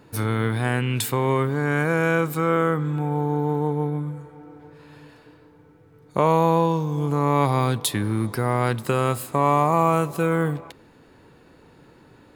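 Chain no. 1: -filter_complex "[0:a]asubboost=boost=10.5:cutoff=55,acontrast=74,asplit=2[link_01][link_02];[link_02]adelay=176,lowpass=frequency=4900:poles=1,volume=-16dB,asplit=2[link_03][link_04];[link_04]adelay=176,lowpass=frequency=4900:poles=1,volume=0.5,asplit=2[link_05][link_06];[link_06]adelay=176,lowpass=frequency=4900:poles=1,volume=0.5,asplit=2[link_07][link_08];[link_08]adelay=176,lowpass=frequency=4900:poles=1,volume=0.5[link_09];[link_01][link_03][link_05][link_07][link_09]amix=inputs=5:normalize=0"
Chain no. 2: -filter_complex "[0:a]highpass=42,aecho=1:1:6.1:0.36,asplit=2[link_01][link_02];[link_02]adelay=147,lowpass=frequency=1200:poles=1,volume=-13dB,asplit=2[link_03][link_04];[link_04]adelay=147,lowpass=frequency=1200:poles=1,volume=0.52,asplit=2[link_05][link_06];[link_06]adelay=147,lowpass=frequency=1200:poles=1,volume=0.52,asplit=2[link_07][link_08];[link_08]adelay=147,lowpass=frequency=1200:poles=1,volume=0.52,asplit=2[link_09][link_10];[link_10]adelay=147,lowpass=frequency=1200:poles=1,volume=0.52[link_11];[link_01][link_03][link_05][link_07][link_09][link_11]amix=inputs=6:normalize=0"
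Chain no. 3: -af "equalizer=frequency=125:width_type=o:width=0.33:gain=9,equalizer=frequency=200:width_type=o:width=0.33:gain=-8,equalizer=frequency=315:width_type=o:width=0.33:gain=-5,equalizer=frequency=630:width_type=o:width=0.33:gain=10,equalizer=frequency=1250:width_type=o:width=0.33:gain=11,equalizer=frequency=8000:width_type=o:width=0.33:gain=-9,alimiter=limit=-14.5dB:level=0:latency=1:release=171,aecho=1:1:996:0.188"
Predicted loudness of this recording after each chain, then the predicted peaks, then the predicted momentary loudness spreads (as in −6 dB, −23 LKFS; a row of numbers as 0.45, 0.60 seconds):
−17.0, −21.0, −25.5 LKFS; −3.5, −3.5, −13.0 dBFS; 7, 8, 15 LU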